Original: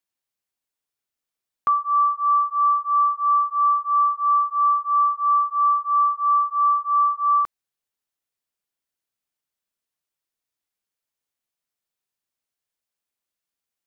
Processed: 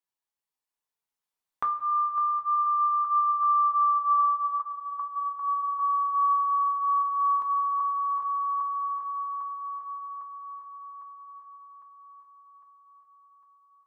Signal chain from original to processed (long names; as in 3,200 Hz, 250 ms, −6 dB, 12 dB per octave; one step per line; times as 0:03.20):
feedback delay that plays each chunk backwards 391 ms, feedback 79%, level −10 dB
source passing by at 0:04.16, 10 m/s, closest 12 metres
parametric band 920 Hz +9.5 dB 0.46 octaves
downward compressor 4 to 1, threshold −33 dBFS, peak gain reduction 17 dB
tape delay 357 ms, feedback 90%, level −18.5 dB, low-pass 1,200 Hz
coupled-rooms reverb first 0.27 s, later 4.2 s, from −18 dB, DRR 2 dB
level +2.5 dB